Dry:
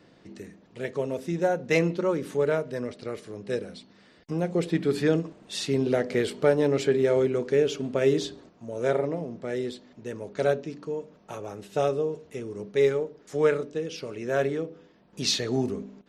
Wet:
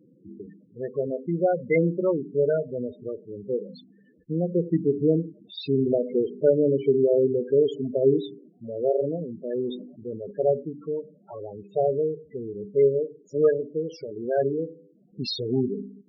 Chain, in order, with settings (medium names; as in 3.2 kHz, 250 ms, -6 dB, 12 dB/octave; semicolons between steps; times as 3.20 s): 4.81–5.58 s: treble shelf 2.3 kHz -6 dB; loudest bins only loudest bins 8; 9.47–10.31 s: decay stretcher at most 77 dB/s; trim +2.5 dB